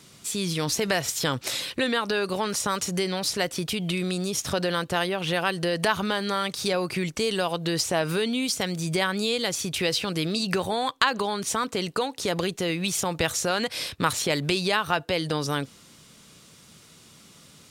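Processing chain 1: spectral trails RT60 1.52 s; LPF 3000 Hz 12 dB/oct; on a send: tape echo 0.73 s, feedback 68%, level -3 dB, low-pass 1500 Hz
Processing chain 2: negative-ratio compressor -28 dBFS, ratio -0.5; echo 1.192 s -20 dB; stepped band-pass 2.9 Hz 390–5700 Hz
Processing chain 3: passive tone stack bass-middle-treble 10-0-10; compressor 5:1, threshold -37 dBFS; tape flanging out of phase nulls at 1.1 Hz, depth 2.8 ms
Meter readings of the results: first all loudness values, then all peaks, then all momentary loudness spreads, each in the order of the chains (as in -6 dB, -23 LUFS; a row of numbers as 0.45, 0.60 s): -22.5, -40.5, -42.0 LUFS; -4.5, -20.0, -20.5 dBFS; 7, 14, 12 LU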